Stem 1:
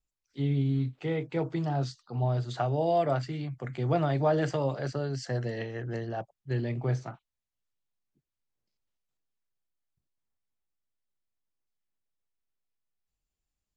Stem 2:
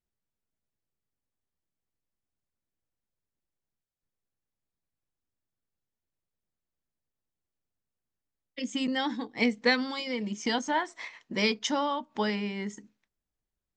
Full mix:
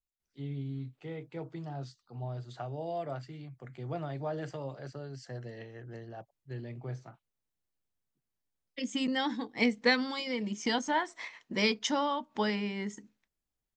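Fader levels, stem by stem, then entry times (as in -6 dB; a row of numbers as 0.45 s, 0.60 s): -10.5 dB, -1.5 dB; 0.00 s, 0.20 s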